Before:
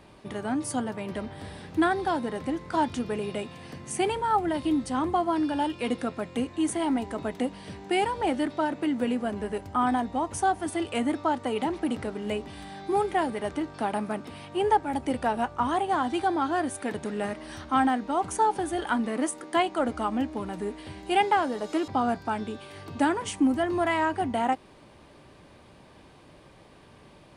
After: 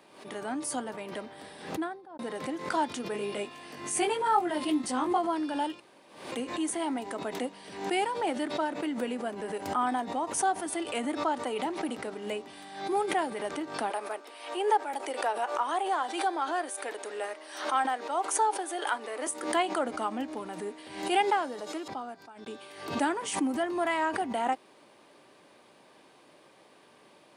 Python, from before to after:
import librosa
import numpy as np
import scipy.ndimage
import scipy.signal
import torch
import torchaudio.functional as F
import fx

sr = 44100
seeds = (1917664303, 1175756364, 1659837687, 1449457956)

y = fx.studio_fade_out(x, sr, start_s=1.5, length_s=0.69)
y = fx.doubler(y, sr, ms=20.0, db=-2, at=(3.12, 5.18))
y = fx.highpass(y, sr, hz=370.0, slope=24, at=(13.9, 19.27))
y = fx.edit(y, sr, fx.room_tone_fill(start_s=5.8, length_s=0.52),
    fx.fade_out_span(start_s=21.2, length_s=1.26), tone=tone)
y = scipy.signal.sosfilt(scipy.signal.butter(2, 300.0, 'highpass', fs=sr, output='sos'), y)
y = fx.high_shelf(y, sr, hz=7100.0, db=4.5)
y = fx.pre_swell(y, sr, db_per_s=85.0)
y = y * 10.0 ** (-3.0 / 20.0)